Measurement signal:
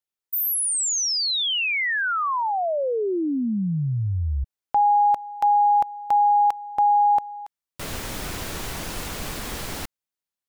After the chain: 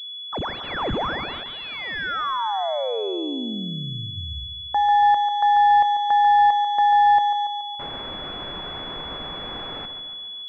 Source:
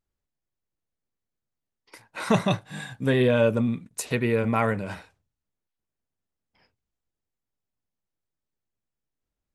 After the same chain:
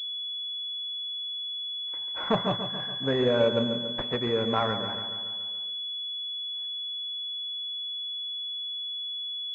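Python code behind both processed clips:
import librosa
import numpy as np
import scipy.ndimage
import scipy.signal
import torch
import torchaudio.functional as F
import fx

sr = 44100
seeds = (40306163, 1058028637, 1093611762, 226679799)

p1 = fx.low_shelf(x, sr, hz=270.0, db=-10.5)
p2 = fx.hum_notches(p1, sr, base_hz=50, count=2)
p3 = p2 + fx.echo_feedback(p2, sr, ms=142, feedback_pct=58, wet_db=-9, dry=0)
y = fx.pwm(p3, sr, carrier_hz=3400.0)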